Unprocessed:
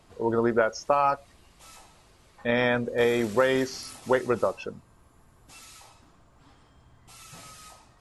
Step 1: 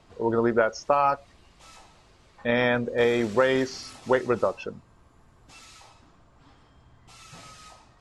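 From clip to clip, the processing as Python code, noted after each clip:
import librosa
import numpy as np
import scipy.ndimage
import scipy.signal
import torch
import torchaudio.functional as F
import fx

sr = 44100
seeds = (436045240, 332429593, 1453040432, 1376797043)

y = scipy.signal.sosfilt(scipy.signal.butter(2, 6700.0, 'lowpass', fs=sr, output='sos'), x)
y = y * librosa.db_to_amplitude(1.0)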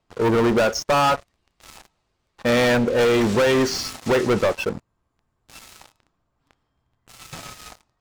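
y = fx.leveller(x, sr, passes=5)
y = y * librosa.db_to_amplitude(-6.0)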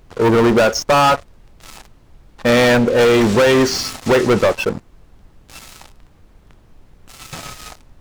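y = fx.dmg_noise_colour(x, sr, seeds[0], colour='brown', level_db=-50.0)
y = y * librosa.db_to_amplitude(5.5)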